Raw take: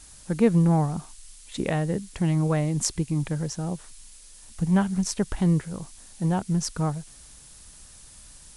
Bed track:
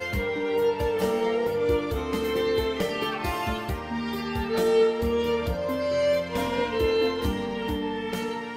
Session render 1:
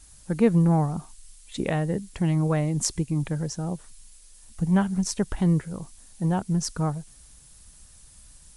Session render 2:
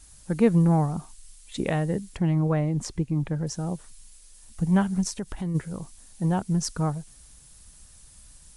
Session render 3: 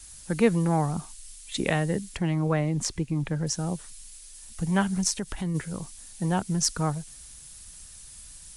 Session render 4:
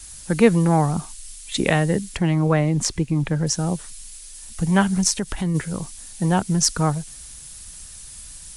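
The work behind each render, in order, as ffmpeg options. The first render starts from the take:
-af "afftdn=nr=6:nf=-49"
-filter_complex "[0:a]asettb=1/sr,asplit=3[a][b][c];[a]atrim=end=2.174[d];[b]atrim=start=2.17:end=3.47,asetpts=PTS-STARTPTS,afade=t=in:d=0.004:c=qsin,afade=t=out:st=1.296:d=0.004:c=qsin,lowpass=f=2k:p=1[e];[c]atrim=start=3.466[f];[d][e]acrossfade=d=0.004:c1=hsin:c2=qsin[g];[g][f]acrossfade=d=0.004:c1=qsin:c2=hsin,asplit=3[h][i][j];[h]afade=t=out:st=5.08:d=0.02[k];[i]acompressor=threshold=-33dB:ratio=2:attack=3.2:release=140:knee=1:detection=peak,afade=t=in:st=5.08:d=0.02,afade=t=out:st=5.54:d=0.02[l];[j]afade=t=in:st=5.54:d=0.02[m];[k][l][m]amix=inputs=3:normalize=0"
-filter_complex "[0:a]acrossover=split=250|1500[a][b][c];[a]alimiter=level_in=0.5dB:limit=-24dB:level=0:latency=1,volume=-0.5dB[d];[c]acontrast=67[e];[d][b][e]amix=inputs=3:normalize=0"
-af "volume=6.5dB,alimiter=limit=-2dB:level=0:latency=1"

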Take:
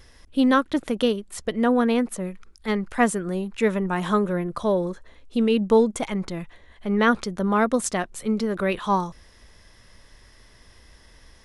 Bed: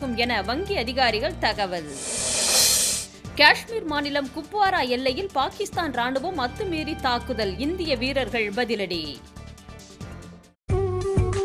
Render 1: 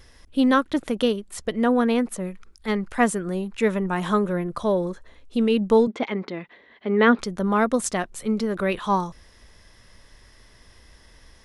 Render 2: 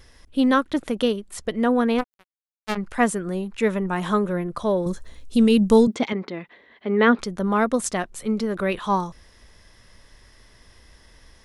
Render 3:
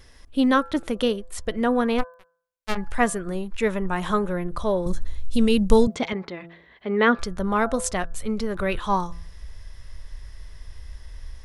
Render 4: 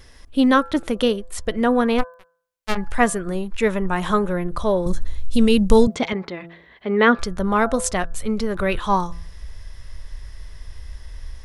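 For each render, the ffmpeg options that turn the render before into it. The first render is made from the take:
-filter_complex "[0:a]asettb=1/sr,asplit=3[a][b][c];[a]atrim=end=5.874[d];[b]atrim=start=5.87:end=7.19,asetpts=PTS-STARTPTS,afade=t=in:d=0.004:c=qsin,afade=t=out:st=1.316:d=0.004:c=qsin,highpass=240,equalizer=f=240:t=q:w=4:g=7,equalizer=f=420:t=q:w=4:g=6,equalizer=f=2k:t=q:w=4:g=4,lowpass=f=4.4k:w=0.5412,lowpass=f=4.4k:w=1.3066[e];[c]atrim=start=7.186[f];[d][e]acrossfade=d=0.004:c1=hsin:c2=qsin[g];[g][f]acrossfade=d=0.004:c1=qsin:c2=hsin"
-filter_complex "[0:a]asplit=3[a][b][c];[a]afade=t=out:st=1.98:d=0.02[d];[b]acrusher=bits=2:mix=0:aa=0.5,afade=t=in:st=1.98:d=0.02,afade=t=out:st=2.76:d=0.02[e];[c]afade=t=in:st=2.76:d=0.02[f];[d][e][f]amix=inputs=3:normalize=0,asettb=1/sr,asplit=3[g][h][i];[g]atrim=end=4.864[j];[h]atrim=start=4.86:end=6.13,asetpts=PTS-STARTPTS,afade=t=in:d=0.004:c=qsin,afade=t=out:st=1.266:d=0.004:c=qsin,bass=f=250:g=9,treble=f=4k:g=13[k];[i]atrim=start=6.126[l];[j][k]acrossfade=d=0.004:c1=hsin:c2=qsin[m];[m][l]acrossfade=d=0.004:c1=qsin:c2=hsin"
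-af "bandreject=f=168.8:t=h:w=4,bandreject=f=337.6:t=h:w=4,bandreject=f=506.4:t=h:w=4,bandreject=f=675.2:t=h:w=4,bandreject=f=844:t=h:w=4,bandreject=f=1.0128k:t=h:w=4,bandreject=f=1.1816k:t=h:w=4,bandreject=f=1.3504k:t=h:w=4,bandreject=f=1.5192k:t=h:w=4,bandreject=f=1.688k:t=h:w=4,asubboost=boost=7:cutoff=83"
-af "volume=3.5dB,alimiter=limit=-1dB:level=0:latency=1"

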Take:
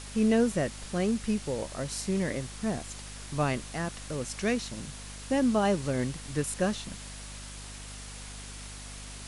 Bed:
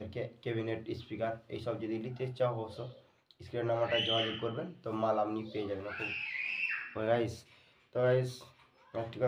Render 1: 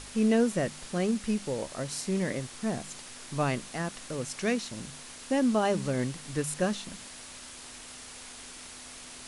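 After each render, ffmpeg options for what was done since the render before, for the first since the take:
-af "bandreject=f=50:t=h:w=4,bandreject=f=100:t=h:w=4,bandreject=f=150:t=h:w=4,bandreject=f=200:t=h:w=4"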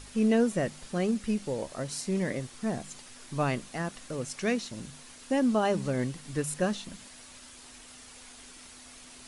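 -af "afftdn=nr=6:nf=-46"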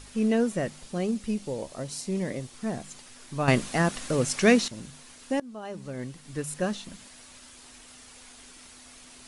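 -filter_complex "[0:a]asettb=1/sr,asplit=3[a][b][c];[a]atrim=end=0.824[d];[b]atrim=start=0.82:end=2.54,asetpts=PTS-STARTPTS,afade=t=in:d=0.004:c=qsin,afade=t=out:st=1.716:d=0.004:c=qsin,equalizer=f=1.6k:w=1.5:g=-5[e];[c]atrim=start=2.536[f];[d][e]acrossfade=d=0.004:c1=hsin:c2=qsin[g];[g][f]acrossfade=d=0.004:c1=qsin:c2=hsin,asplit=4[h][i][j][k];[h]atrim=end=3.482[l];[i]atrim=start=3.478:end=4.682,asetpts=PTS-STARTPTS,volume=9.5dB[m];[j]atrim=start=4.678:end=5.4,asetpts=PTS-STARTPTS,afade=t=out:st=0.718:d=0.004:c=hsin:silence=0.0707946[n];[k]atrim=start=5.4,asetpts=PTS-STARTPTS,afade=t=in:d=1.28:silence=0.0707946[o];[l][m]acrossfade=d=0.004:c1=hsin:c2=hsin[p];[n][o]concat=n=2:v=0:a=1[q];[p][q]acrossfade=d=0.004:c1=hsin:c2=hsin"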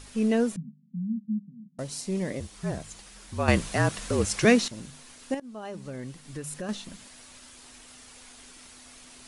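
-filter_complex "[0:a]asettb=1/sr,asplit=3[a][b][c];[a]atrim=end=0.564[d];[b]atrim=start=0.56:end=1.79,asetpts=PTS-STARTPTS,afade=t=in:d=0.004:c=qsin,afade=t=out:st=1.226:d=0.004:c=qsin,asuperpass=centerf=190:order=8:qfactor=2.4[e];[c]atrim=start=1.786[f];[d][e]acrossfade=d=0.004:c1=hsin:c2=qsin[g];[g][f]acrossfade=d=0.004:c1=qsin:c2=hsin,asettb=1/sr,asplit=3[h][i][j];[h]atrim=end=2.404[k];[i]atrim=start=2.4:end=4.45,asetpts=PTS-STARTPTS,afade=t=in:d=0.004:c=qsin,afade=t=out:st=2.046:d=0.004:c=qsin,afreqshift=-46[l];[j]atrim=start=4.446[m];[k][l]acrossfade=d=0.004:c1=hsin:c2=qsin[n];[n][m]acrossfade=d=0.004:c1=qsin:c2=hsin,asettb=1/sr,asplit=3[o][p][q];[o]atrim=end=5.344[r];[p]atrim=start=5.34:end=6.69,asetpts=PTS-STARTPTS,afade=t=in:d=0.004:c=qsin,afade=t=out:st=1.346:d=0.004:c=qsin,acompressor=threshold=-32dB:ratio=4:attack=3.2:release=140:knee=1:detection=peak[s];[q]atrim=start=6.686[t];[r][s]acrossfade=d=0.004:c1=hsin:c2=qsin[u];[u][t]acrossfade=d=0.004:c1=qsin:c2=hsin"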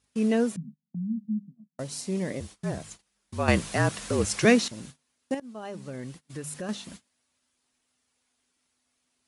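-af "agate=range=-26dB:threshold=-43dB:ratio=16:detection=peak,highpass=67"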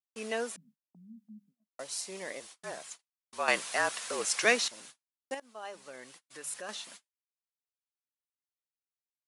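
-af "agate=range=-33dB:threshold=-43dB:ratio=3:detection=peak,highpass=720"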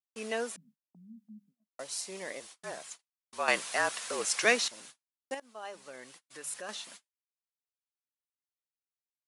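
-af anull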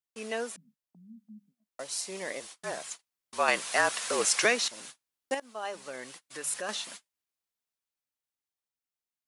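-af "dynaudnorm=f=350:g=13:m=7.5dB,alimiter=limit=-11.5dB:level=0:latency=1:release=440"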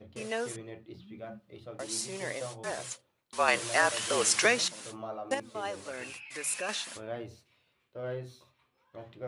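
-filter_complex "[1:a]volume=-8.5dB[a];[0:a][a]amix=inputs=2:normalize=0"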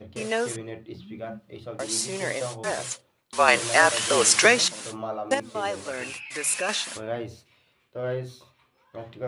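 -af "volume=7.5dB"

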